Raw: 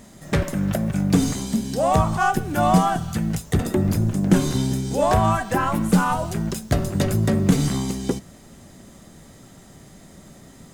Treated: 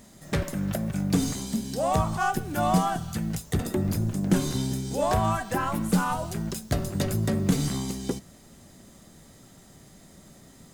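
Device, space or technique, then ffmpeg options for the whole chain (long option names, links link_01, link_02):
presence and air boost: -af "equalizer=frequency=4400:width_type=o:width=0.77:gain=2.5,highshelf=frequency=9600:gain=6,volume=-6dB"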